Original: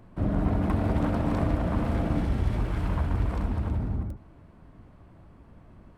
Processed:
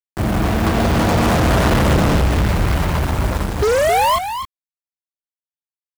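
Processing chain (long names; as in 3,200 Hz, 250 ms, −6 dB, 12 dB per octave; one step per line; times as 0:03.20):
source passing by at 0:01.69, 16 m/s, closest 3.5 metres
mains-hum notches 50/100/150/200/250/300/350/400/450 Hz
sound drawn into the spectrogram rise, 0:03.62–0:04.16, 400–1,100 Hz −35 dBFS
high-pass filter 42 Hz 12 dB per octave
parametric band 260 Hz −8.5 dB 0.3 octaves
double-tracking delay 31 ms −11 dB
fuzz pedal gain 47 dB, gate −49 dBFS
bit reduction 5 bits
single-tap delay 266 ms −9 dB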